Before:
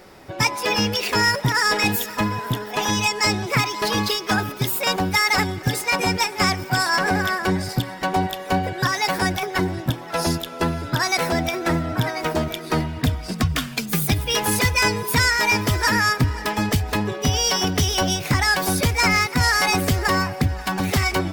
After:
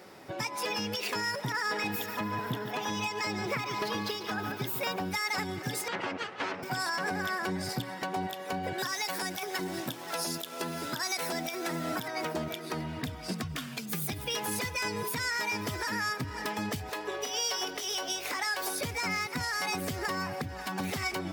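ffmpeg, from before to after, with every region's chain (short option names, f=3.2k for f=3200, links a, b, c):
-filter_complex "[0:a]asettb=1/sr,asplit=3[a][b][c];[a]atrim=end=1.524[d];[b]atrim=start=1.52:end=5.02,asetpts=PTS-STARTPTS,afade=t=in:d=0.004:c=qsin,afade=t=out:st=3.496:d=0.004:c=qsin,equalizer=f=9k:w=0.57:g=-7.5,aecho=1:1:144|288|432|576:0.224|0.0895|0.0358|0.0143,atrim=end_sample=154350[e];[c]atrim=start=5.016[f];[d][e]acrossfade=d=0.004:c1=hsin:c2=qsin[g];[g][f]acrossfade=d=0.004:c1=qsin:c2=hsin,asettb=1/sr,asplit=3[h][i][j];[h]atrim=end=5.884[k];[i]atrim=start=5.88:end=6.63,asetpts=PTS-STARTPTS,afade=t=in:d=0.004:c=qsin,afade=t=out:st=0.746:d=0.004:c=qsin,aeval=exprs='abs(val(0))':c=same,highpass=120,lowpass=2.2k[l];[j]atrim=start=6.626[m];[k][l]acrossfade=d=0.004:c1=hsin:c2=qsin[n];[n][m]acrossfade=d=0.004:c1=qsin:c2=hsin,asettb=1/sr,asplit=3[o][p][q];[o]atrim=end=8.784[r];[p]atrim=start=8.78:end=12.08,asetpts=PTS-STARTPTS,afade=t=in:d=0.004:c=qsin,afade=t=out:st=3.296:d=0.004:c=qsin,highpass=170,highshelf=f=3.8k:g=9.5,acrusher=bits=5:mix=0:aa=0.5[s];[q]atrim=start=12.076[t];[r][s]acrossfade=d=0.004:c1=hsin:c2=qsin[u];[u][t]acrossfade=d=0.004:c1=qsin:c2=hsin,asettb=1/sr,asplit=3[v][w][x];[v]atrim=end=16.894[y];[w]atrim=start=16.89:end=18.81,asetpts=PTS-STARTPTS,afade=t=in:d=0.004:c=qsin,afade=t=out:st=1.916:d=0.004:c=qsin,highpass=f=370:w=0.5412,highpass=f=370:w=1.3066,aeval=exprs='val(0)+0.00562*(sin(2*PI*50*n/s)+sin(2*PI*2*50*n/s)/2+sin(2*PI*3*50*n/s)/3+sin(2*PI*4*50*n/s)/4+sin(2*PI*5*50*n/s)/5)':c=same,asplit=2[z][aa];[aa]adelay=22,volume=-11.5dB[ab];[z][ab]amix=inputs=2:normalize=0,atrim=end_sample=84672[ac];[x]atrim=start=18.806[ad];[y][ac]acrossfade=d=0.004:c1=hsin:c2=qsin[ae];[ae][ad]acrossfade=d=0.004:c1=qsin:c2=hsin,highpass=130,acompressor=threshold=-21dB:ratio=6,alimiter=limit=-18dB:level=0:latency=1:release=206,volume=-4.5dB"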